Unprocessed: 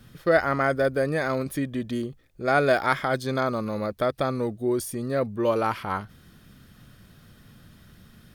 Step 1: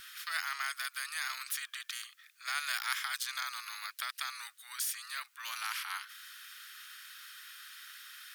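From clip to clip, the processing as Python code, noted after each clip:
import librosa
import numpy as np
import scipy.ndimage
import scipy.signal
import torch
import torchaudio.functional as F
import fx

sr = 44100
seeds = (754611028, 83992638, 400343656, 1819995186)

y = scipy.signal.sosfilt(scipy.signal.butter(8, 1300.0, 'highpass', fs=sr, output='sos'), x)
y = fx.spectral_comp(y, sr, ratio=2.0)
y = F.gain(torch.from_numpy(y), -4.5).numpy()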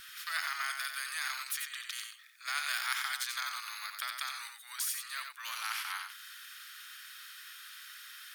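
y = x + 10.0 ** (-6.0 / 20.0) * np.pad(x, (int(90 * sr / 1000.0), 0))[:len(x)]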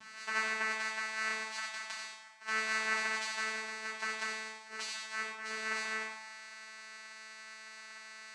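y = fx.hpss(x, sr, part='percussive', gain_db=5)
y = fx.vocoder(y, sr, bands=4, carrier='saw', carrier_hz=219.0)
y = fx.rev_double_slope(y, sr, seeds[0], early_s=0.51, late_s=1.6, knee_db=-18, drr_db=-4.0)
y = F.gain(torch.from_numpy(y), -5.5).numpy()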